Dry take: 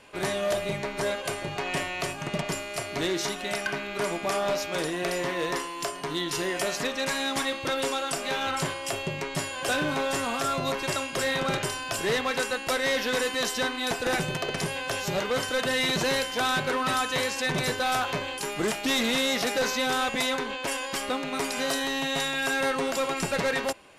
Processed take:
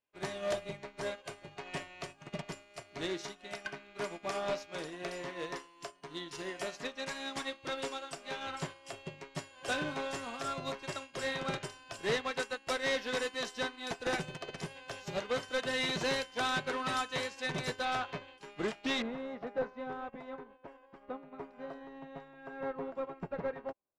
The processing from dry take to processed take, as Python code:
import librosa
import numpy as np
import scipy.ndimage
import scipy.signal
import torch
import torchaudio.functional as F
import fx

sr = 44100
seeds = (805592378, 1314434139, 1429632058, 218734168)

y = fx.lowpass(x, sr, hz=fx.steps((0.0, 7600.0), (17.85, 4300.0), (19.02, 1100.0)), slope=12)
y = fx.upward_expand(y, sr, threshold_db=-47.0, expansion=2.5)
y = y * 10.0 ** (-4.5 / 20.0)